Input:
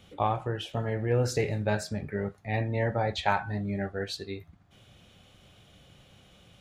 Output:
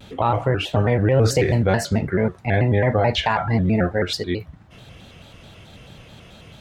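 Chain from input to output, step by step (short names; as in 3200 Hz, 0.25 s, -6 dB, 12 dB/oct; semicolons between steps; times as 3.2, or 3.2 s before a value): high shelf 4600 Hz -5.5 dB; maximiser +20.5 dB; shaped vibrato square 4.6 Hz, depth 160 cents; gain -7.5 dB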